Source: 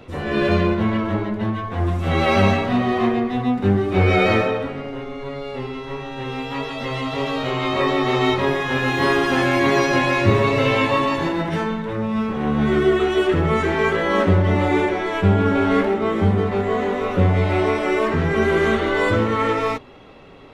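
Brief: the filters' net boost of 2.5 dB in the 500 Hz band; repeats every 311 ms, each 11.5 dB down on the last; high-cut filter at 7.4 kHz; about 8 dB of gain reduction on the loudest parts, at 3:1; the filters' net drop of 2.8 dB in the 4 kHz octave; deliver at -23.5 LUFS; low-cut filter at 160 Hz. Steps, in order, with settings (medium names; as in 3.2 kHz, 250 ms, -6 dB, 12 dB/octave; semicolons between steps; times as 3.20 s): high-pass 160 Hz; low-pass 7.4 kHz; peaking EQ 500 Hz +3.5 dB; peaking EQ 4 kHz -3.5 dB; compression 3:1, threshold -23 dBFS; feedback delay 311 ms, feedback 27%, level -11.5 dB; trim +1.5 dB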